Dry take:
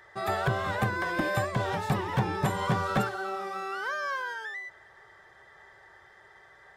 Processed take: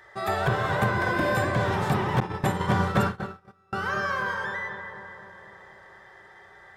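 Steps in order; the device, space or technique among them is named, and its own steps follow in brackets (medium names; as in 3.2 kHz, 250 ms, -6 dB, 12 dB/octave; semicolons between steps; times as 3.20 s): dub delay into a spring reverb (filtered feedback delay 250 ms, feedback 68%, low-pass 1.8 kHz, level -6.5 dB; spring tank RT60 1.7 s, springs 34/56 ms, chirp 25 ms, DRR 3.5 dB); 2.20–3.73 s: gate -25 dBFS, range -34 dB; trim +2 dB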